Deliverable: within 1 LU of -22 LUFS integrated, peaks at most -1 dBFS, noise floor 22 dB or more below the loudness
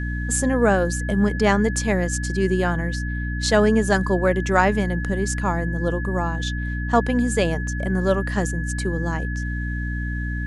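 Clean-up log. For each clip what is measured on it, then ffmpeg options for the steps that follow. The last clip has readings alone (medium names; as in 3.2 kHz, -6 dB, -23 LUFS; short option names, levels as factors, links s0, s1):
hum 60 Hz; highest harmonic 300 Hz; hum level -24 dBFS; steady tone 1.7 kHz; tone level -32 dBFS; loudness -22.0 LUFS; peak level -3.5 dBFS; loudness target -22.0 LUFS
-> -af "bandreject=f=60:t=h:w=4,bandreject=f=120:t=h:w=4,bandreject=f=180:t=h:w=4,bandreject=f=240:t=h:w=4,bandreject=f=300:t=h:w=4"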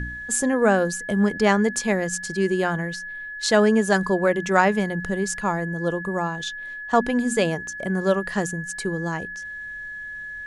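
hum not found; steady tone 1.7 kHz; tone level -32 dBFS
-> -af "bandreject=f=1700:w=30"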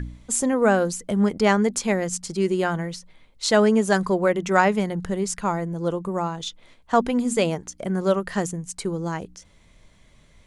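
steady tone not found; loudness -23.0 LUFS; peak level -4.0 dBFS; loudness target -22.0 LUFS
-> -af "volume=1.12"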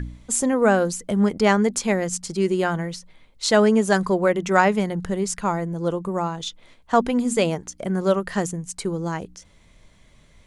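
loudness -22.0 LUFS; peak level -3.0 dBFS; noise floor -55 dBFS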